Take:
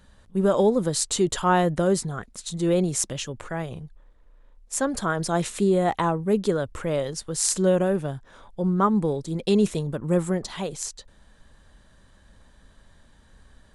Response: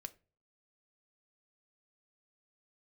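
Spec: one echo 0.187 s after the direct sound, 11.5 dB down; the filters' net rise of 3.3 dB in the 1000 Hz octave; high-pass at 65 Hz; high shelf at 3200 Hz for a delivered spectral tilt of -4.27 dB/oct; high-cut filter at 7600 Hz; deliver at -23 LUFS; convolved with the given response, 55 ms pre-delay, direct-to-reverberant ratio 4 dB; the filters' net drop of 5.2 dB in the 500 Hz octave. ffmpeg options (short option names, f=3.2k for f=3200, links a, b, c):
-filter_complex "[0:a]highpass=65,lowpass=7.6k,equalizer=f=500:t=o:g=-8.5,equalizer=f=1k:t=o:g=6.5,highshelf=f=3.2k:g=3.5,aecho=1:1:187:0.266,asplit=2[a][b];[1:a]atrim=start_sample=2205,adelay=55[c];[b][c]afir=irnorm=-1:irlink=0,volume=1dB[d];[a][d]amix=inputs=2:normalize=0,volume=1dB"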